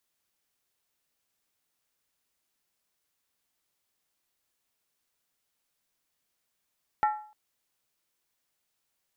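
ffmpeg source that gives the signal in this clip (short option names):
-f lavfi -i "aevalsrc='0.112*pow(10,-3*t/0.47)*sin(2*PI*849*t)+0.0473*pow(10,-3*t/0.372)*sin(2*PI*1353.3*t)+0.02*pow(10,-3*t/0.322)*sin(2*PI*1813.5*t)+0.00841*pow(10,-3*t/0.31)*sin(2*PI*1949.3*t)+0.00355*pow(10,-3*t/0.289)*sin(2*PI*2252.4*t)':d=0.3:s=44100"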